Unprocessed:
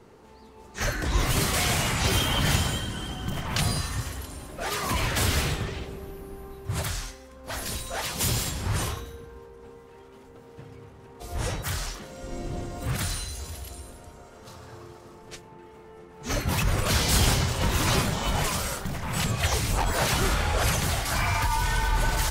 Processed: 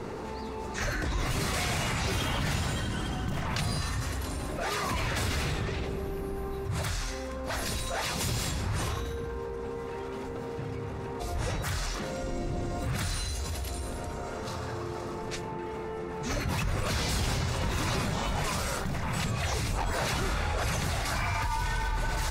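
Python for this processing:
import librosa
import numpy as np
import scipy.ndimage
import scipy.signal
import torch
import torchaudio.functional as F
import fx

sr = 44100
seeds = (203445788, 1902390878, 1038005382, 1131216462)

y = fx.high_shelf(x, sr, hz=9600.0, db=-11.0)
y = fx.notch(y, sr, hz=3100.0, q=14.0)
y = fx.env_flatten(y, sr, amount_pct=70)
y = y * 10.0 ** (-8.5 / 20.0)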